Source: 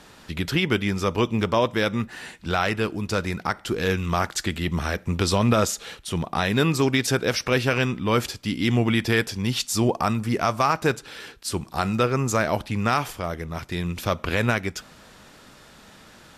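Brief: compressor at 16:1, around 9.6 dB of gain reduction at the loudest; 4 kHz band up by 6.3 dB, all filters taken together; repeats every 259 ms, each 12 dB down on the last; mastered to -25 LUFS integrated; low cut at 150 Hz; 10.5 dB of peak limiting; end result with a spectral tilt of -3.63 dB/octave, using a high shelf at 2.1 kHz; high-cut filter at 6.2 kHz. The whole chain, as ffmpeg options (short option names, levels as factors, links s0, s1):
-af "highpass=150,lowpass=6200,highshelf=f=2100:g=4.5,equalizer=f=4000:t=o:g=4.5,acompressor=threshold=0.0631:ratio=16,alimiter=limit=0.119:level=0:latency=1,aecho=1:1:259|518|777:0.251|0.0628|0.0157,volume=2.11"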